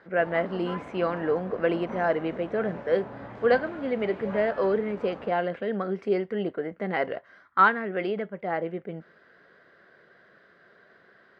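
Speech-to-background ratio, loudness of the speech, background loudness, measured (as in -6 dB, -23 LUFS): 13.0 dB, -27.5 LUFS, -40.5 LUFS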